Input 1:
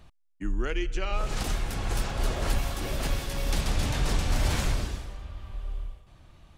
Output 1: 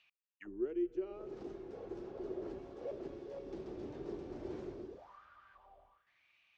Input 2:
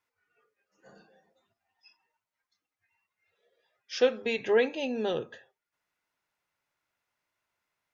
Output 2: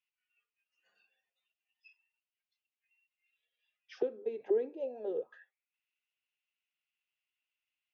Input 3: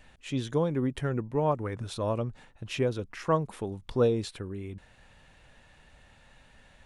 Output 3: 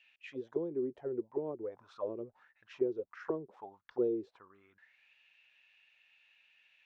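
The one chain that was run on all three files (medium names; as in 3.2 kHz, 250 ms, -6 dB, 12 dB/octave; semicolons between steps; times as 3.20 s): resonant low-pass 6 kHz, resonance Q 1.8; auto-wah 370–2800 Hz, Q 7.1, down, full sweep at -25 dBFS; trim +2 dB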